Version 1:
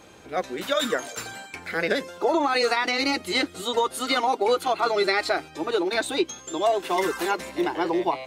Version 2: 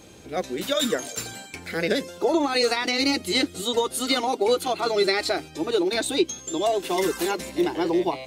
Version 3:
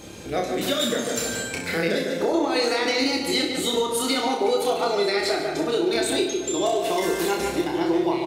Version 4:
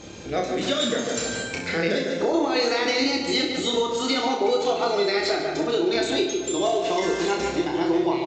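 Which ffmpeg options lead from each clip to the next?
-af "equalizer=f=1200:w=0.56:g=-10.5,volume=1.88"
-filter_complex "[0:a]asplit=2[s0][s1];[s1]adelay=147,lowpass=f=2800:p=1,volume=0.447,asplit=2[s2][s3];[s3]adelay=147,lowpass=f=2800:p=1,volume=0.51,asplit=2[s4][s5];[s5]adelay=147,lowpass=f=2800:p=1,volume=0.51,asplit=2[s6][s7];[s7]adelay=147,lowpass=f=2800:p=1,volume=0.51,asplit=2[s8][s9];[s9]adelay=147,lowpass=f=2800:p=1,volume=0.51,asplit=2[s10][s11];[s11]adelay=147,lowpass=f=2800:p=1,volume=0.51[s12];[s2][s4][s6][s8][s10][s12]amix=inputs=6:normalize=0[s13];[s0][s13]amix=inputs=2:normalize=0,acompressor=threshold=0.0316:ratio=3,asplit=2[s14][s15];[s15]aecho=0:1:30|63|99.3|139.2|183.2:0.631|0.398|0.251|0.158|0.1[s16];[s14][s16]amix=inputs=2:normalize=0,volume=1.88"
-af "aresample=16000,aresample=44100"

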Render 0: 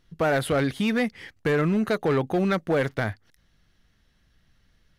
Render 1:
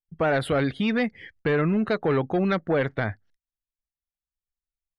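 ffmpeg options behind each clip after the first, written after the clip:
-af "afftdn=nr=18:nf=-44,agate=range=0.0562:threshold=0.00141:ratio=16:detection=peak,lowpass=7800"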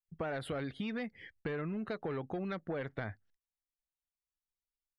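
-af "acompressor=threshold=0.0447:ratio=6,volume=0.398"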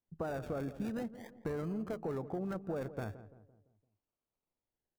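-filter_complex "[0:a]acrossover=split=1500[s0][s1];[s1]acrusher=samples=34:mix=1:aa=0.000001:lfo=1:lforange=20.4:lforate=0.42[s2];[s0][s2]amix=inputs=2:normalize=0,asplit=2[s3][s4];[s4]adelay=170,lowpass=f=1100:p=1,volume=0.224,asplit=2[s5][s6];[s6]adelay=170,lowpass=f=1100:p=1,volume=0.47,asplit=2[s7][s8];[s8]adelay=170,lowpass=f=1100:p=1,volume=0.47,asplit=2[s9][s10];[s10]adelay=170,lowpass=f=1100:p=1,volume=0.47,asplit=2[s11][s12];[s12]adelay=170,lowpass=f=1100:p=1,volume=0.47[s13];[s3][s5][s7][s9][s11][s13]amix=inputs=6:normalize=0"

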